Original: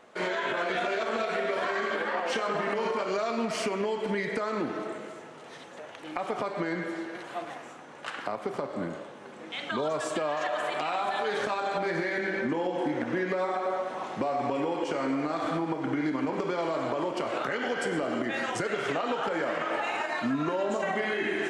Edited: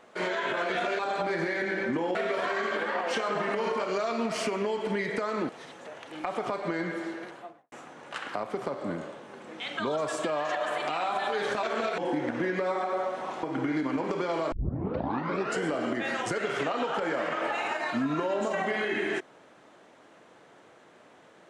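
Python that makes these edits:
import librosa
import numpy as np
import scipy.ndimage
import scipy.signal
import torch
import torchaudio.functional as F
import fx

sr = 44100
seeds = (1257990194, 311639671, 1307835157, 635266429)

y = fx.studio_fade_out(x, sr, start_s=7.05, length_s=0.59)
y = fx.edit(y, sr, fx.swap(start_s=0.99, length_s=0.35, other_s=11.55, other_length_s=1.16),
    fx.cut(start_s=4.68, length_s=0.73),
    fx.cut(start_s=14.16, length_s=1.56),
    fx.tape_start(start_s=16.81, length_s=1.11), tone=tone)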